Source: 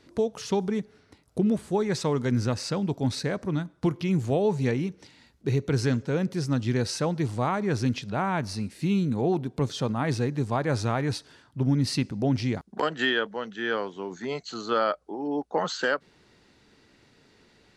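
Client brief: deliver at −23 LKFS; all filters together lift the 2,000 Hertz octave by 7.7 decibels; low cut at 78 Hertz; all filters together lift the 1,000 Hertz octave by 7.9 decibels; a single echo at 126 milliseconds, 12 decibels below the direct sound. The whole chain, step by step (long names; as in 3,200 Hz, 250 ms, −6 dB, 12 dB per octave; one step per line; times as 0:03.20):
high-pass filter 78 Hz
parametric band 1,000 Hz +8.5 dB
parametric band 2,000 Hz +6.5 dB
single-tap delay 126 ms −12 dB
level +1.5 dB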